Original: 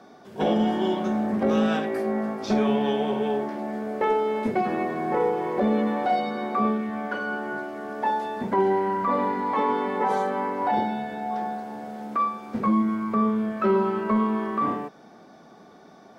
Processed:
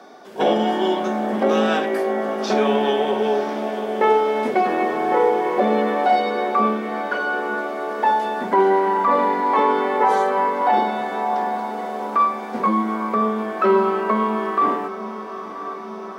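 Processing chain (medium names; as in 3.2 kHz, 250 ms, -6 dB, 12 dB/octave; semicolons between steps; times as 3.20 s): high-pass 330 Hz 12 dB/octave; on a send: echo that smears into a reverb 961 ms, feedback 65%, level -12.5 dB; on the sum: trim +7 dB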